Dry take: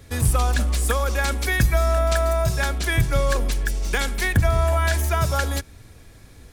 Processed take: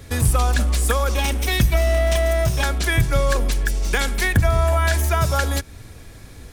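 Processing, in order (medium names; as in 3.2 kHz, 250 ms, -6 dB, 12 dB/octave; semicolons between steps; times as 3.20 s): 1.14–2.63 s: comb filter that takes the minimum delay 0.34 ms; in parallel at -0.5 dB: compression, threshold -29 dBFS, peak gain reduction 15.5 dB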